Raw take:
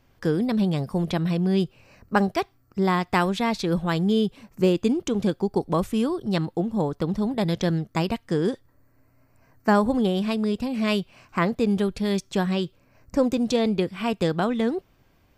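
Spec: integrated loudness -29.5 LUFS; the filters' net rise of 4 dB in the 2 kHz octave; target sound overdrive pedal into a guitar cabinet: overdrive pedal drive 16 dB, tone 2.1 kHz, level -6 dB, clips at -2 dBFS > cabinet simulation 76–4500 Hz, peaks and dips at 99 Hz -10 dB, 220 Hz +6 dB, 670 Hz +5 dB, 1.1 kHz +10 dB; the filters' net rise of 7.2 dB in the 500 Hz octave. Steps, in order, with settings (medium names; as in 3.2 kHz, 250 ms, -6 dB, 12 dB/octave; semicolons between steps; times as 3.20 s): peaking EQ 500 Hz +7 dB; peaking EQ 2 kHz +3.5 dB; overdrive pedal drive 16 dB, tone 2.1 kHz, level -6 dB, clips at -2 dBFS; cabinet simulation 76–4500 Hz, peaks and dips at 99 Hz -10 dB, 220 Hz +6 dB, 670 Hz +5 dB, 1.1 kHz +10 dB; trim -14 dB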